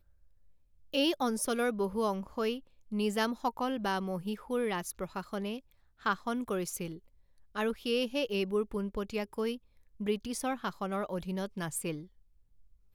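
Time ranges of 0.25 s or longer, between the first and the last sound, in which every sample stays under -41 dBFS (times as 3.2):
2.59–2.92
5.59–6.06
6.97–7.56
9.56–10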